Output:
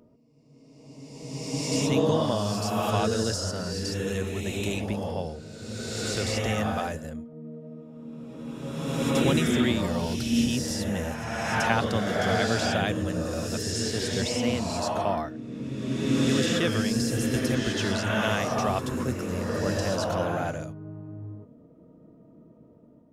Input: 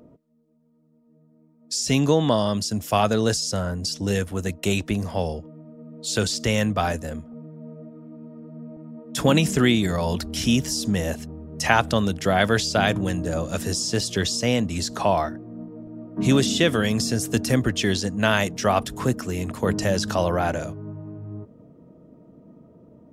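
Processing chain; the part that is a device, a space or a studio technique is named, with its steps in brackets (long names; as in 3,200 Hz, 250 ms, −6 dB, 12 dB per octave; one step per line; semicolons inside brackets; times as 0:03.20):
reverse reverb (reversed playback; convolution reverb RT60 2.2 s, pre-delay 69 ms, DRR −2 dB; reversed playback)
level −8 dB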